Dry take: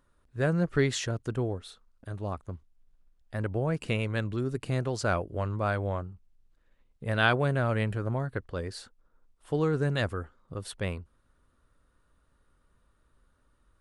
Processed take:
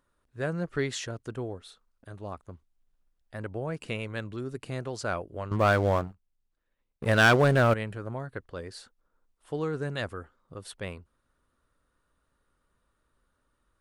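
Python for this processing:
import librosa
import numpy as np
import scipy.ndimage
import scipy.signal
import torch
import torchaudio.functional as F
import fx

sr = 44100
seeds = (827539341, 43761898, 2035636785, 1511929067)

y = fx.low_shelf(x, sr, hz=180.0, db=-6.5)
y = fx.leveller(y, sr, passes=3, at=(5.51, 7.74))
y = F.gain(torch.from_numpy(y), -2.5).numpy()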